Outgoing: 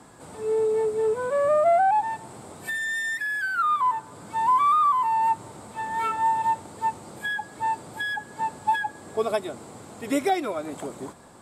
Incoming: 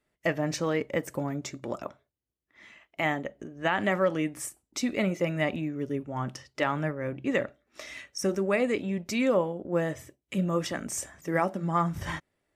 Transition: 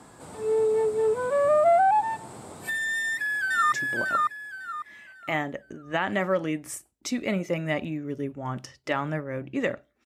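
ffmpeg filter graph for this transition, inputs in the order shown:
-filter_complex "[0:a]apad=whole_dur=10.05,atrim=end=10.05,atrim=end=3.722[a];[1:a]atrim=start=1.428:end=7.76[b];[a][b]acrossfade=d=0.004:c1=hsin:c2=hsin,asplit=2[c][d];[d]afade=t=in:st=2.95:d=0.01,afade=t=out:st=3.72:d=0.01,aecho=0:1:550|1100|1650|2200:0.891251|0.267375|0.0802126|0.0240638[e];[c][e]amix=inputs=2:normalize=0"

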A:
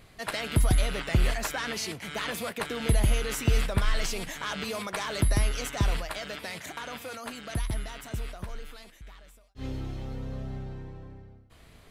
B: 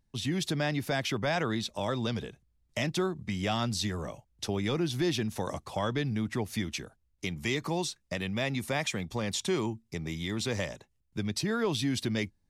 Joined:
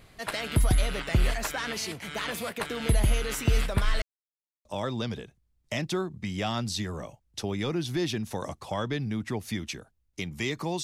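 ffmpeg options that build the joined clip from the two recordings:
-filter_complex "[0:a]apad=whole_dur=10.83,atrim=end=10.83,asplit=2[a][b];[a]atrim=end=4.02,asetpts=PTS-STARTPTS,afade=t=out:st=4.016:d=0.004:c=hsin[c];[b]atrim=start=4.02:end=4.65,asetpts=PTS-STARTPTS,volume=0[d];[1:a]atrim=start=1.7:end=7.88,asetpts=PTS-STARTPTS,afade=t=in:d=0.004:c=hsin[e];[c][d][e]concat=n=3:v=0:a=1"

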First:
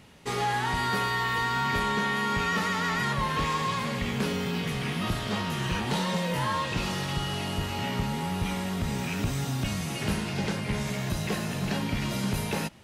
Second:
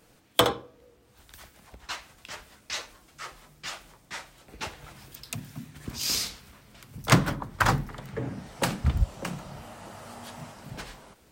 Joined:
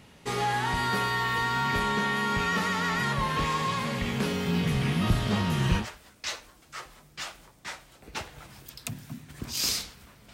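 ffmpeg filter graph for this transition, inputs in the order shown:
-filter_complex "[0:a]asettb=1/sr,asplit=3[a][b][c];[a]atrim=end=4.484[d];[b]atrim=start=4.48:end=5.88,asetpts=PTS-STARTPTS,afade=t=in:d=0.004:c=qsin,afade=t=out:st=1.396:d=0.004:c=qsin,lowshelf=f=210:g=8.5[e];[c]atrim=start=5.876[f];[d][e]acrossfade=d=0.004:c1=hsin:c2=qsin[g];[g][f]acrossfade=d=0.004:c1=qsin:c2=hsin,apad=whole_dur=10.33,atrim=end=10.33,atrim=end=5.88,asetpts=PTS-STARTPTS[h];[1:a]atrim=start=2.22:end=6.79,asetpts=PTS-STARTPTS[i];[h][i]acrossfade=d=0.12:c1=tri:c2=tri"

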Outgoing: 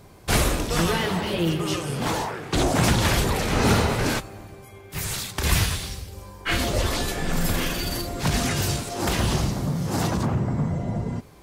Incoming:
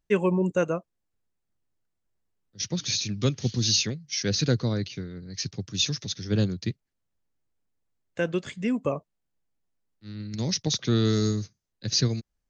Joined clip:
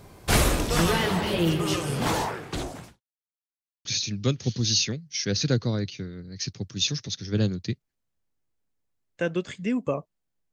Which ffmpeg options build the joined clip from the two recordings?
-filter_complex "[0:a]apad=whole_dur=10.52,atrim=end=10.52,asplit=2[a][b];[a]atrim=end=3.01,asetpts=PTS-STARTPTS,afade=t=out:st=2.28:d=0.73:c=qua[c];[b]atrim=start=3.01:end=3.85,asetpts=PTS-STARTPTS,volume=0[d];[1:a]atrim=start=2.83:end=9.5,asetpts=PTS-STARTPTS,afade=t=in:d=0.004:c=hsin[e];[c][d][e]concat=n=3:v=0:a=1"

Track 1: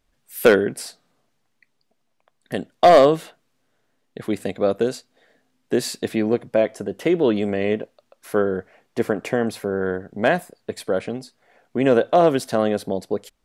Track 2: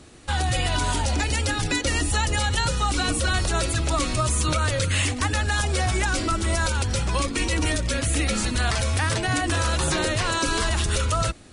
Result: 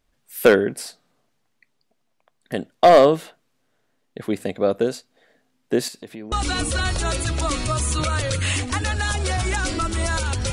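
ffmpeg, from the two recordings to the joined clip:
-filter_complex "[0:a]asettb=1/sr,asplit=3[a][b][c];[a]atrim=end=5.884[d];[b]atrim=start=5.88:end=6.32,asetpts=PTS-STARTPTS,afade=t=in:d=0.004:c=qsin,afade=t=out:st=0.436:d=0.004:c=qsin,acompressor=threshold=-39dB:ratio=2.5:attack=3.2:release=140:knee=1:detection=peak[e];[c]atrim=start=6.316[f];[d][e]acrossfade=d=0.004:c1=hsin:c2=qsin[g];[g][f]acrossfade=d=0.004:c1=qsin:c2=hsin,apad=whole_dur=10.52,atrim=end=10.52,atrim=end=6.322[h];[1:a]atrim=start=2.808:end=7.01[i];[h][i]acrossfade=d=0.004:c1=hsin:c2=hsin"

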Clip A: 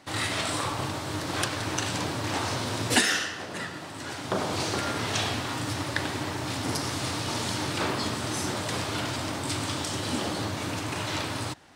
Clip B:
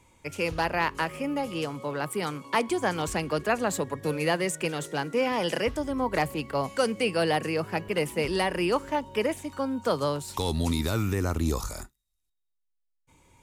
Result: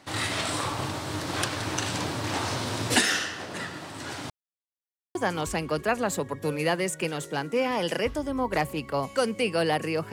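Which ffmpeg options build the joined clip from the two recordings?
-filter_complex "[0:a]apad=whole_dur=10.12,atrim=end=10.12,asplit=2[a][b];[a]atrim=end=4.3,asetpts=PTS-STARTPTS,afade=t=out:st=4.296:d=0.004:c=hsin[c];[b]atrim=start=4.3:end=5.15,asetpts=PTS-STARTPTS,volume=0[d];[1:a]atrim=start=2.76:end=7.73,asetpts=PTS-STARTPTS,afade=t=in:d=0.004:c=hsin[e];[c][d][e]concat=n=3:v=0:a=1"

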